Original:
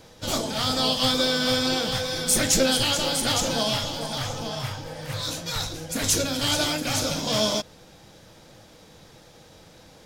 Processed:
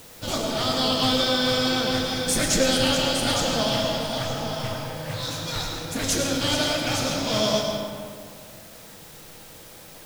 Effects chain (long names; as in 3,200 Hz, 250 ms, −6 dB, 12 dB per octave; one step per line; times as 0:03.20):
high-shelf EQ 7,600 Hz −7 dB
in parallel at −9 dB: bit-depth reduction 6 bits, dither triangular
on the sum: convolution reverb RT60 2.1 s, pre-delay 60 ms, DRR 1.5 dB
level −3 dB